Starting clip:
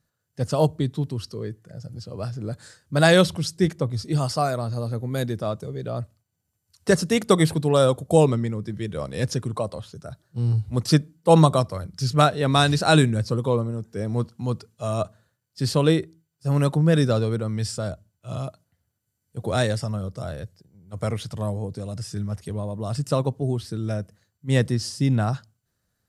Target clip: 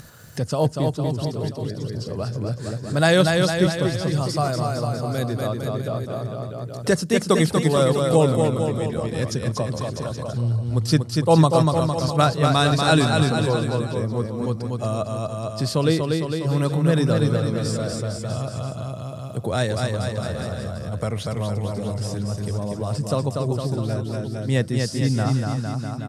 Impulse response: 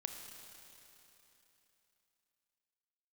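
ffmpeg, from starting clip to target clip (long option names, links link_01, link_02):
-af "aecho=1:1:240|456|650.4|825.4|982.8:0.631|0.398|0.251|0.158|0.1,acompressor=mode=upward:threshold=-19dB:ratio=2.5,volume=-1dB"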